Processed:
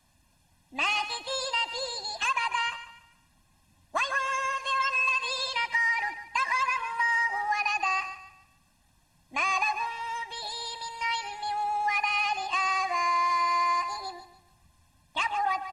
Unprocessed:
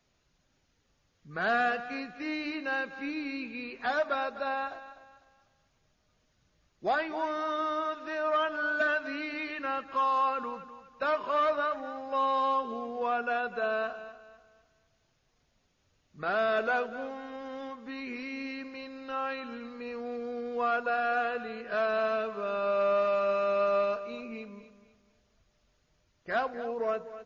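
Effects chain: comb 2 ms, depth 92%; compressor, threshold -26 dBFS, peak gain reduction 6.5 dB; speed mistake 45 rpm record played at 78 rpm; gain +3.5 dB

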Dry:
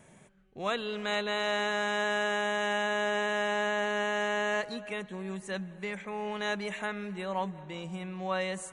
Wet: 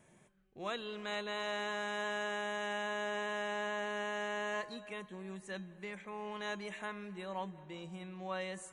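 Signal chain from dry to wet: resonator 350 Hz, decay 0.33 s, harmonics odd, mix 70%; gain +2 dB

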